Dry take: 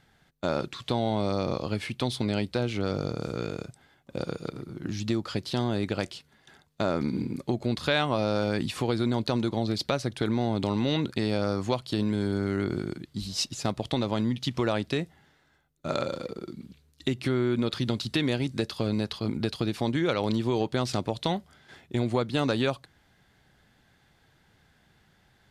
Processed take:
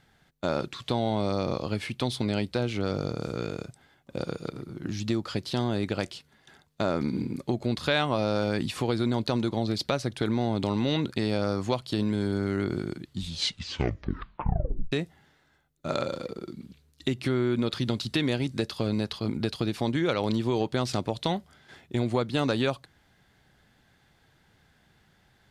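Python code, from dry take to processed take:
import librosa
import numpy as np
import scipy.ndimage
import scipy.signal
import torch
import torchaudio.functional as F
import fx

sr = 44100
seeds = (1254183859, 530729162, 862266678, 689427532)

y = fx.edit(x, sr, fx.tape_stop(start_s=13.05, length_s=1.87), tone=tone)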